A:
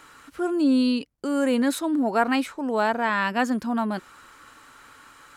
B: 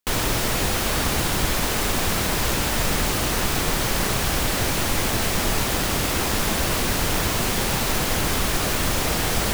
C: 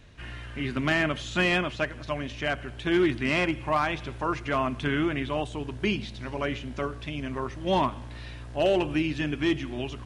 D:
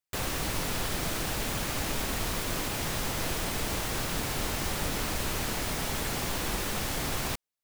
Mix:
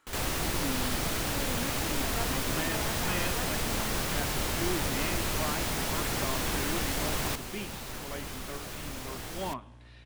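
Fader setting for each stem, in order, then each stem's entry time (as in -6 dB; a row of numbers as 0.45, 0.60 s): -18.0, -17.5, -12.0, 0.0 dB; 0.00, 0.00, 1.70, 0.00 s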